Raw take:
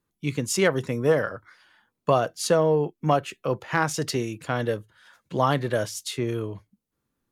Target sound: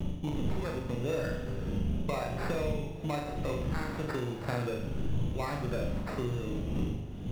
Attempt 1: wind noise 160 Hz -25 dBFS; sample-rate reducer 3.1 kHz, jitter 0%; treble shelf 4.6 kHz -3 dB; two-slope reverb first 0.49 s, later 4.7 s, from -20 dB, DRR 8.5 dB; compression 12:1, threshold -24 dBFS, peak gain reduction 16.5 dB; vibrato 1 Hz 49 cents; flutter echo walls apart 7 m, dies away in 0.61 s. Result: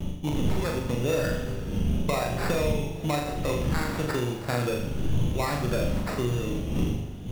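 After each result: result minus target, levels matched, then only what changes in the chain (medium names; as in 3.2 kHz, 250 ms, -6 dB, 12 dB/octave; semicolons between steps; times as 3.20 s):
compression: peak gain reduction -6.5 dB; 8 kHz band +6.0 dB
change: compression 12:1, threshold -31 dBFS, peak gain reduction 23 dB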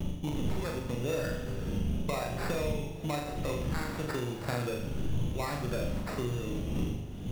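8 kHz band +6.0 dB
change: treble shelf 4.6 kHz -12 dB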